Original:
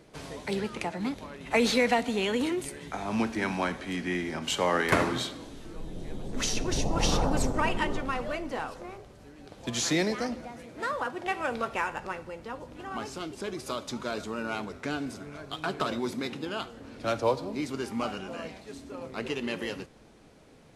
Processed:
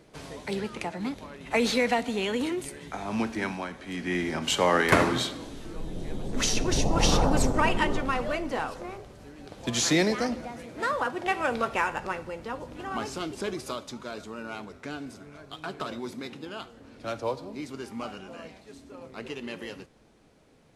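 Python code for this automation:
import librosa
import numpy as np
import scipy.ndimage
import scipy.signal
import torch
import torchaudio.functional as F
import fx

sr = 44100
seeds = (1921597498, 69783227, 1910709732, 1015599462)

y = fx.gain(x, sr, db=fx.line((3.45, -0.5), (3.68, -7.0), (4.22, 3.5), (13.48, 3.5), (13.97, -4.5)))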